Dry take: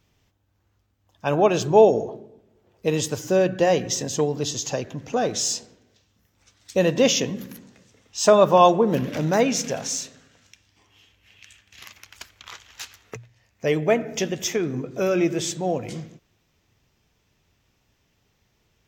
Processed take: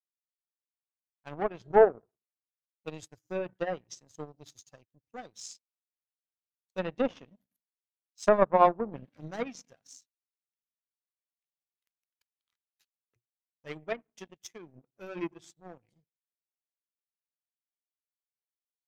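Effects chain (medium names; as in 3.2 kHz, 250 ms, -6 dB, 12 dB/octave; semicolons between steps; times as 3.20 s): expander on every frequency bin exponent 1.5; power-law waveshaper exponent 2; low-pass that closes with the level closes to 1.3 kHz, closed at -25.5 dBFS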